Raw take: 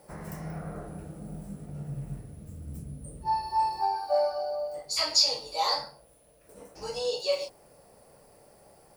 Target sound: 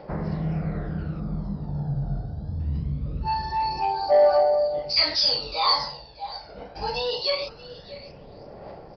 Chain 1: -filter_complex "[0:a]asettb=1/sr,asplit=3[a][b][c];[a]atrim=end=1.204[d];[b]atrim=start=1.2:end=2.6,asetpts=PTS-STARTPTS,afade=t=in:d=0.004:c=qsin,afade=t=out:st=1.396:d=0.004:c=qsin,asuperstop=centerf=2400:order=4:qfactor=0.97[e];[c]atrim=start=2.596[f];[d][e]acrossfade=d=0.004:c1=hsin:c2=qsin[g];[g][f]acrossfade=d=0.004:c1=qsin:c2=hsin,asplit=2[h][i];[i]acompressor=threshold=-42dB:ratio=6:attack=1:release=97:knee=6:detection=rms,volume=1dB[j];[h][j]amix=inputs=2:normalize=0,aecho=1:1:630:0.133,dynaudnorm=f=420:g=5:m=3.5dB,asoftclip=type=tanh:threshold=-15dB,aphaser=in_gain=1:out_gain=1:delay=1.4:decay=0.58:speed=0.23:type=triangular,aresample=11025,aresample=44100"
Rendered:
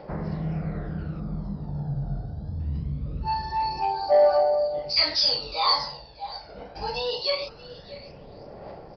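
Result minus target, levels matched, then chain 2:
compressor: peak gain reduction +6.5 dB
-filter_complex "[0:a]asettb=1/sr,asplit=3[a][b][c];[a]atrim=end=1.204[d];[b]atrim=start=1.2:end=2.6,asetpts=PTS-STARTPTS,afade=t=in:d=0.004:c=qsin,afade=t=out:st=1.396:d=0.004:c=qsin,asuperstop=centerf=2400:order=4:qfactor=0.97[e];[c]atrim=start=2.596[f];[d][e]acrossfade=d=0.004:c1=hsin:c2=qsin[g];[g][f]acrossfade=d=0.004:c1=qsin:c2=hsin,asplit=2[h][i];[i]acompressor=threshold=-34dB:ratio=6:attack=1:release=97:knee=6:detection=rms,volume=1dB[j];[h][j]amix=inputs=2:normalize=0,aecho=1:1:630:0.133,dynaudnorm=f=420:g=5:m=3.5dB,asoftclip=type=tanh:threshold=-15dB,aphaser=in_gain=1:out_gain=1:delay=1.4:decay=0.58:speed=0.23:type=triangular,aresample=11025,aresample=44100"

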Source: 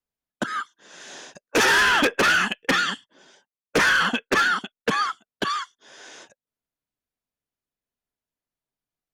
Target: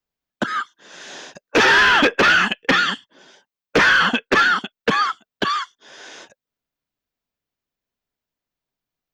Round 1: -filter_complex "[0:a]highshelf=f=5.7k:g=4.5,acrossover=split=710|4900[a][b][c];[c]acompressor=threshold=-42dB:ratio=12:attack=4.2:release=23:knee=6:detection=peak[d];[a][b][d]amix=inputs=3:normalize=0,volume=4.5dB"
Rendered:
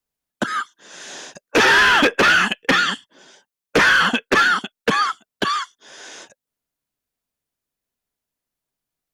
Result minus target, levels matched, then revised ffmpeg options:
8000 Hz band +3.5 dB
-filter_complex "[0:a]highshelf=f=5.7k:g=4.5,acrossover=split=710|4900[a][b][c];[c]acompressor=threshold=-42dB:ratio=12:attack=4.2:release=23:knee=6:detection=peak,equalizer=f=10k:w=0.95:g=-14[d];[a][b][d]amix=inputs=3:normalize=0,volume=4.5dB"

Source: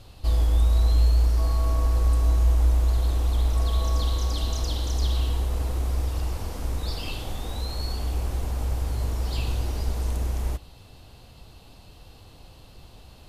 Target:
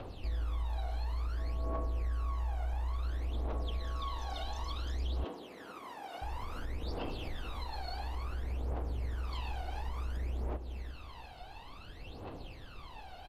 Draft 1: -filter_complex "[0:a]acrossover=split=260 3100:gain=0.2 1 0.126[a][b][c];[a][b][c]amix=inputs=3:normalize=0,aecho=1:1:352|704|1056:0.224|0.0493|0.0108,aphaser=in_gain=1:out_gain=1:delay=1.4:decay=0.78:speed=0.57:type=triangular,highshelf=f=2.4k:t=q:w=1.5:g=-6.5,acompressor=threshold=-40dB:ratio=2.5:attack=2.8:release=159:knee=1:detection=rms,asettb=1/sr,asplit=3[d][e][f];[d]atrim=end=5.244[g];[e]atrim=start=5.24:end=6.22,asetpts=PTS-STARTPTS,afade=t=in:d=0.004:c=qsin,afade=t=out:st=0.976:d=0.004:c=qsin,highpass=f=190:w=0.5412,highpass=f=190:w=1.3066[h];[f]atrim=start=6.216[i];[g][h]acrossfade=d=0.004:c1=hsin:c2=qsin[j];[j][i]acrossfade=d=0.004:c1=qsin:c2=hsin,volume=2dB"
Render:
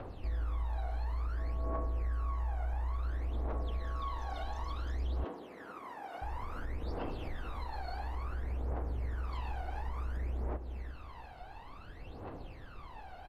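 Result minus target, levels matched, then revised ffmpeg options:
4000 Hz band -8.0 dB
-filter_complex "[0:a]acrossover=split=260 3100:gain=0.2 1 0.126[a][b][c];[a][b][c]amix=inputs=3:normalize=0,aecho=1:1:352|704|1056:0.224|0.0493|0.0108,aphaser=in_gain=1:out_gain=1:delay=1.4:decay=0.78:speed=0.57:type=triangular,acompressor=threshold=-40dB:ratio=2.5:attack=2.8:release=159:knee=1:detection=rms,asettb=1/sr,asplit=3[d][e][f];[d]atrim=end=5.244[g];[e]atrim=start=5.24:end=6.22,asetpts=PTS-STARTPTS,afade=t=in:d=0.004:c=qsin,afade=t=out:st=0.976:d=0.004:c=qsin,highpass=f=190:w=0.5412,highpass=f=190:w=1.3066[h];[f]atrim=start=6.216[i];[g][h]acrossfade=d=0.004:c1=hsin:c2=qsin[j];[j][i]acrossfade=d=0.004:c1=qsin:c2=hsin,volume=2dB"

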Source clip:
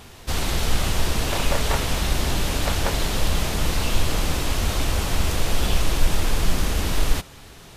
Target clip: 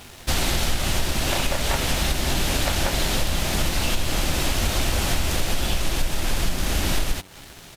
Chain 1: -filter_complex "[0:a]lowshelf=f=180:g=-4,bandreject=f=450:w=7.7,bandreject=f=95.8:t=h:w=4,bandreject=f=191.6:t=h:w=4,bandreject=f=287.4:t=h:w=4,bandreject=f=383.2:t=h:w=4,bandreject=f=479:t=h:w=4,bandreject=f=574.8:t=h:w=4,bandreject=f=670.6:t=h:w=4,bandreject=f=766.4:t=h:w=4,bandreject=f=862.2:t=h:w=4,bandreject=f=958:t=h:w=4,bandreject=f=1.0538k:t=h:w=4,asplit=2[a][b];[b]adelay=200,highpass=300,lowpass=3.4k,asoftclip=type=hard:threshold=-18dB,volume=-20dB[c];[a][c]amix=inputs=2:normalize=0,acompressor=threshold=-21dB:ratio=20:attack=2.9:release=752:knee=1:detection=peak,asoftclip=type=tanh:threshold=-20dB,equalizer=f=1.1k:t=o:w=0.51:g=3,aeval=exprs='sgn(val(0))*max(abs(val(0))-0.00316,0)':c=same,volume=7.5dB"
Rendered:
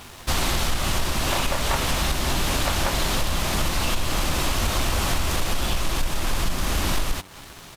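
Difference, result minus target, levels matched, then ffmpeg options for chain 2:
soft clip: distortion +13 dB; 1000 Hz band +3.0 dB
-filter_complex "[0:a]lowshelf=f=180:g=-4,bandreject=f=450:w=7.7,bandreject=f=95.8:t=h:w=4,bandreject=f=191.6:t=h:w=4,bandreject=f=287.4:t=h:w=4,bandreject=f=383.2:t=h:w=4,bandreject=f=479:t=h:w=4,bandreject=f=574.8:t=h:w=4,bandreject=f=670.6:t=h:w=4,bandreject=f=766.4:t=h:w=4,bandreject=f=862.2:t=h:w=4,bandreject=f=958:t=h:w=4,bandreject=f=1.0538k:t=h:w=4,asplit=2[a][b];[b]adelay=200,highpass=300,lowpass=3.4k,asoftclip=type=hard:threshold=-18dB,volume=-20dB[c];[a][c]amix=inputs=2:normalize=0,acompressor=threshold=-21dB:ratio=20:attack=2.9:release=752:knee=1:detection=peak,asoftclip=type=tanh:threshold=-12.5dB,equalizer=f=1.1k:t=o:w=0.51:g=-4,aeval=exprs='sgn(val(0))*max(abs(val(0))-0.00316,0)':c=same,volume=7.5dB"

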